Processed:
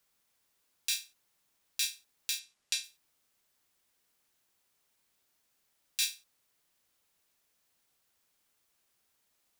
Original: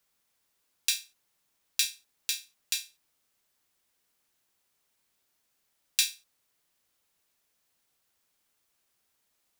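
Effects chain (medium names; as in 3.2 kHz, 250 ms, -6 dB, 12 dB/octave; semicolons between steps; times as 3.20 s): 2.39–2.84 s: low-pass 9.1 kHz 12 dB/octave; peak limiter -12.5 dBFS, peak gain reduction 10 dB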